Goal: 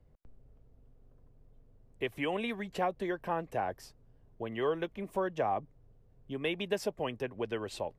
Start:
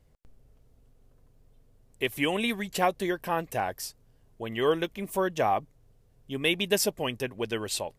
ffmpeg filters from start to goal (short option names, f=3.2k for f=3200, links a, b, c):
-filter_complex "[0:a]lowpass=f=1k:p=1,acrossover=split=210|430[a][b][c];[a]acompressor=threshold=-46dB:ratio=4[d];[b]acompressor=threshold=-42dB:ratio=4[e];[c]acompressor=threshold=-29dB:ratio=4[f];[d][e][f]amix=inputs=3:normalize=0"